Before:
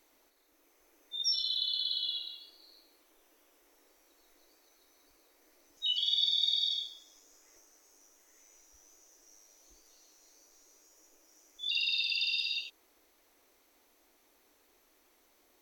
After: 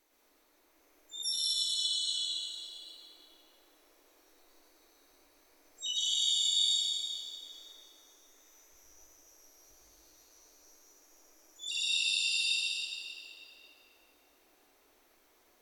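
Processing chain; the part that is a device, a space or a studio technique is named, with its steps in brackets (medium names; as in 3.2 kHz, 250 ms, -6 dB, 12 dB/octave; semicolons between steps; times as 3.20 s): shimmer-style reverb (harmony voices +12 st -8 dB; reverberation RT60 3.1 s, pre-delay 90 ms, DRR -6 dB); trim -5.5 dB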